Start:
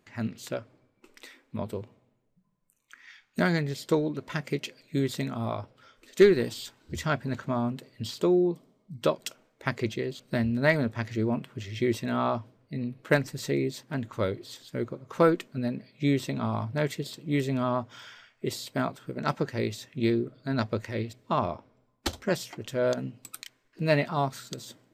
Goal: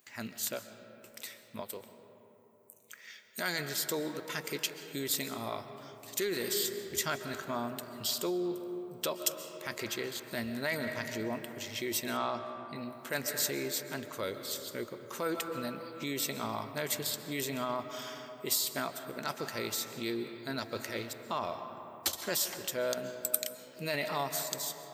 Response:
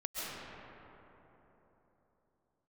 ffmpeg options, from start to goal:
-filter_complex "[0:a]asettb=1/sr,asplit=3[s0][s1][s2];[s0]atrim=end=1.614[s3];[s1]atrim=start=1.61:end=3.59,asetpts=PTS-STARTPTS,afade=t=in:d=0.004:c=qsin,afade=t=out:st=1.976:d=0.004:c=qsin,lowshelf=f=360:g=-8.5[s4];[s2]atrim=start=3.586[s5];[s3][s4]acrossfade=d=0.004:c1=hsin:c2=qsin[s6];[s6][s5]acrossfade=d=0.004:c1=qsin:c2=hsin,asplit=2[s7][s8];[1:a]atrim=start_sample=2205[s9];[s8][s9]afir=irnorm=-1:irlink=0,volume=0.237[s10];[s7][s10]amix=inputs=2:normalize=0,alimiter=limit=0.112:level=0:latency=1:release=11,asettb=1/sr,asplit=3[s11][s12][s13];[s11]atrim=end=12.174[s14];[s12]atrim=start=12.17:end=12.76,asetpts=PTS-STARTPTS,afade=t=in:d=0.004:c=qsin,afade=t=out:st=0.586:d=0.004:c=qsin,lowpass=8100[s15];[s13]atrim=start=12.756[s16];[s14][s15]acrossfade=d=0.004:c1=hsin:c2=qsin[s17];[s17][s16]acrossfade=d=0.004:c1=qsin:c2=hsin,aemphasis=mode=production:type=riaa,volume=0.631"

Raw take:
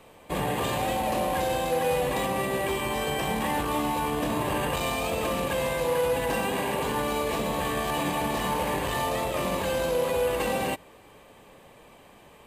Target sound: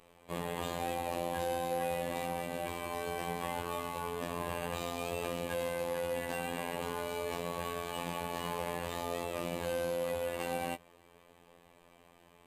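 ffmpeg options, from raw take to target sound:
-af "afftfilt=real='hypot(re,im)*cos(PI*b)':imag='0':win_size=2048:overlap=0.75,volume=0.501"

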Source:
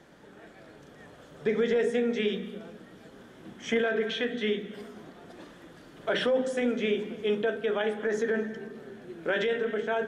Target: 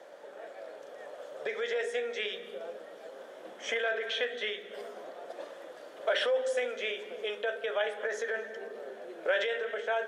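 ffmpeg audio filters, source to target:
-filter_complex "[0:a]acrossover=split=1200[s0][s1];[s0]acompressor=threshold=0.0126:ratio=6[s2];[s2][s1]amix=inputs=2:normalize=0,highpass=f=560:t=q:w=4.4"

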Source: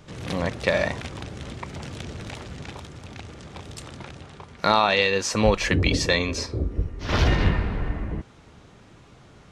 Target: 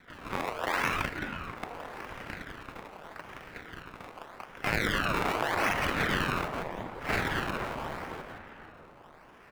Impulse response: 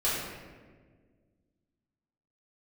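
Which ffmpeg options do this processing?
-filter_complex "[0:a]asettb=1/sr,asplit=3[s0][s1][s2];[s0]atrim=end=5.414[s3];[s1]atrim=start=5.41:end=6.31,asetpts=PTS-STARTPTS,afade=t=in:d=0.004:c=qsin,afade=t=out:st=0.896:d=0.004:c=qsin,aeval=exprs='val(0)+0.5*0.0562*sgn(val(0))':c=same[s4];[s2]atrim=start=6.306[s5];[s3][s4]acrossfade=d=0.004:c1=hsin:c2=qsin[s6];[s6][s5]acrossfade=d=0.004:c1=qsin:c2=hsin,adynamicsmooth=sensitivity=5.5:basefreq=3600,asplit=2[s7][s8];[s8]aecho=0:1:171:0.501[s9];[s7][s9]amix=inputs=2:normalize=0,alimiter=limit=0.178:level=0:latency=1:release=24,lowshelf=f=350:g=-11,acrusher=samples=22:mix=1:aa=0.000001:lfo=1:lforange=22:lforate=0.83,acrossover=split=550 2800:gain=0.2 1 0.224[s10][s11][s12];[s10][s11][s12]amix=inputs=3:normalize=0,asplit=2[s13][s14];[s14]adelay=488,lowpass=f=1400:p=1,volume=0.316,asplit=2[s15][s16];[s16]adelay=488,lowpass=f=1400:p=1,volume=0.47,asplit=2[s17][s18];[s18]adelay=488,lowpass=f=1400:p=1,volume=0.47,asplit=2[s19][s20];[s20]adelay=488,lowpass=f=1400:p=1,volume=0.47,asplit=2[s21][s22];[s22]adelay=488,lowpass=f=1400:p=1,volume=0.47[s23];[s15][s17][s19][s21][s23]amix=inputs=5:normalize=0[s24];[s13][s24]amix=inputs=2:normalize=0,afftfilt=real='re*lt(hypot(re,im),0.158)':imag='im*lt(hypot(re,im),0.158)':win_size=1024:overlap=0.75,aeval=exprs='val(0)*sin(2*PI*480*n/s+480*0.85/0.82*sin(2*PI*0.82*n/s))':c=same,volume=2.24"

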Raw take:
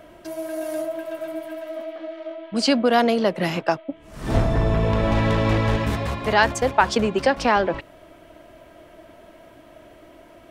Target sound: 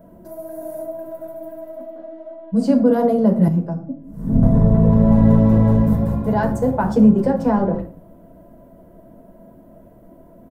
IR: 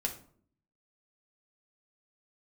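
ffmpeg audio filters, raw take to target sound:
-filter_complex "[0:a]firequalizer=gain_entry='entry(110,0);entry(190,10);entry(300,-2);entry(600,-3);entry(2500,-25);entry(14000,1)':delay=0.05:min_phase=1[s0];[1:a]atrim=start_sample=2205,afade=t=out:st=0.31:d=0.01,atrim=end_sample=14112[s1];[s0][s1]afir=irnorm=-1:irlink=0,asettb=1/sr,asplit=3[s2][s3][s4];[s2]atrim=end=3.484[s5];[s3]atrim=start=3.48:end=4.43,asetpts=PTS-STARTPTS,afade=t=in:d=0.004:c=qsin,afade=t=out:st=0.946:d=0.004:c=qsin,acrossover=split=330[s6][s7];[s7]acompressor=threshold=0.00178:ratio=1.5[s8];[s6][s8]amix=inputs=2:normalize=0[s9];[s4]atrim=start=4.426[s10];[s5][s9]acrossfade=d=0.004:c1=hsin:c2=qsin[s11];[s11][s10]acrossfade=d=0.004:c1=qsin:c2=hsin"

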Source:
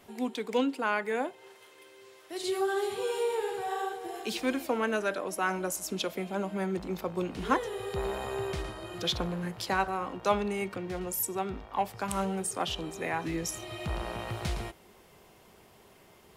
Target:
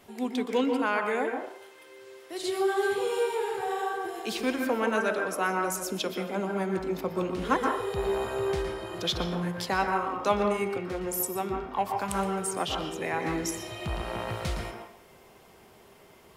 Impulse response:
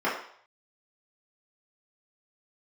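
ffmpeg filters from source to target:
-filter_complex "[0:a]asplit=2[s0][s1];[1:a]atrim=start_sample=2205,highshelf=f=6000:g=10,adelay=120[s2];[s1][s2]afir=irnorm=-1:irlink=0,volume=0.141[s3];[s0][s3]amix=inputs=2:normalize=0,volume=1.12"

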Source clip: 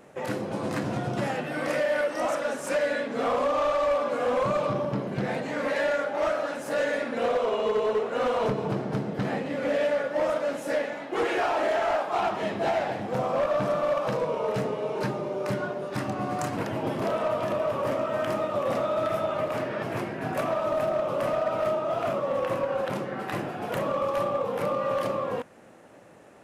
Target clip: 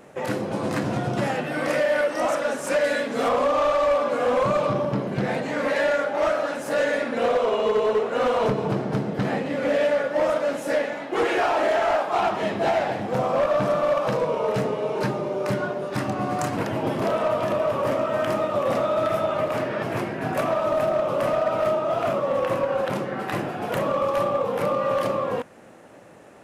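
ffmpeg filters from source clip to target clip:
-filter_complex "[0:a]asettb=1/sr,asplit=3[s0][s1][s2];[s0]atrim=end=2.844[s3];[s1]atrim=start=2.84:end=3.29,asetpts=PTS-STARTPTS,afade=t=in:d=0.004:c=qsin,afade=t=out:st=0.446:d=0.004:c=qsin,aemphasis=mode=production:type=cd[s4];[s2]atrim=start=3.286[s5];[s3][s4]acrossfade=d=0.004:c1=hsin:c2=qsin[s6];[s6][s5]acrossfade=d=0.004:c1=qsin:c2=hsin,volume=1.58"

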